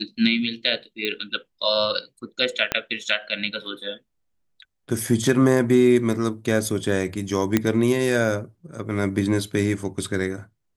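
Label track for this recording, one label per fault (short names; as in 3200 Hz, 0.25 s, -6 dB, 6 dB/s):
1.050000	1.050000	pop -12 dBFS
2.720000	2.720000	pop -6 dBFS
7.570000	7.570000	pop -5 dBFS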